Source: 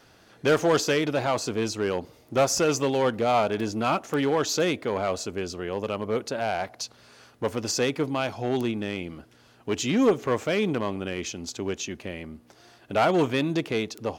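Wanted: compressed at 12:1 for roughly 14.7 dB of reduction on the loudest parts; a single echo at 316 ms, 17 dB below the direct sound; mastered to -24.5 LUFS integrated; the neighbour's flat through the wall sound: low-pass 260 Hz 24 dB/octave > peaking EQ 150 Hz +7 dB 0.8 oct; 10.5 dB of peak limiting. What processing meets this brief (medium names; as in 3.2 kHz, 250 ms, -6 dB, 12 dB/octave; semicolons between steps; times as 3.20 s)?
compression 12:1, threshold -31 dBFS; peak limiter -30.5 dBFS; low-pass 260 Hz 24 dB/octave; peaking EQ 150 Hz +7 dB 0.8 oct; delay 316 ms -17 dB; trim +19.5 dB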